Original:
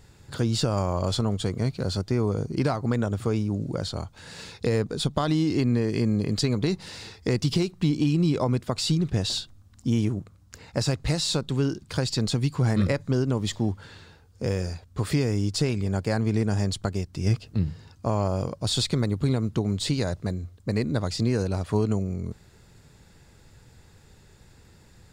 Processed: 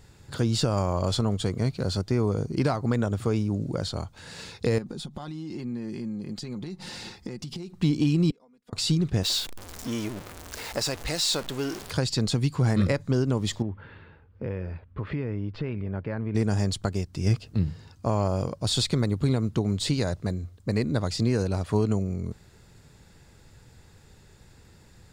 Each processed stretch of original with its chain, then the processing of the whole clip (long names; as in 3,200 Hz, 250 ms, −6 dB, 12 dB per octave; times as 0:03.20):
0:04.78–0:07.76: comb filter 5.6 ms, depth 48% + downward compressor 12 to 1, threshold −34 dBFS + hollow resonant body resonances 240/820 Hz, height 8 dB
0:08.30–0:08.73: gate with flip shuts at −24 dBFS, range −36 dB + parametric band 72 Hz −12.5 dB 1.2 octaves + comb filter 4.2 ms, depth 99%
0:09.23–0:11.91: converter with a step at zero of −30.5 dBFS + parametric band 120 Hz −14 dB 2.2 octaves
0:13.62–0:16.35: low-pass filter 2,600 Hz 24 dB per octave + notch filter 740 Hz, Q 8.4 + downward compressor 2 to 1, threshold −31 dBFS
whole clip: no processing